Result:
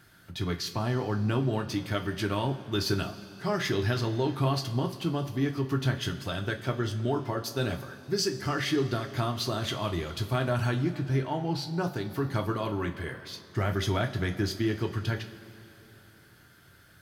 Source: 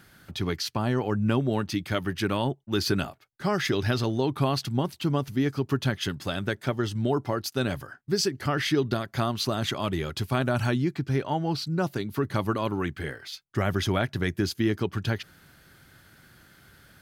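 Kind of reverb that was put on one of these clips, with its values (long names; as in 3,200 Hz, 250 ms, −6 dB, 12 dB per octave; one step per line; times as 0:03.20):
coupled-rooms reverb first 0.23 s, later 3.3 s, from −19 dB, DRR 3 dB
level −4.5 dB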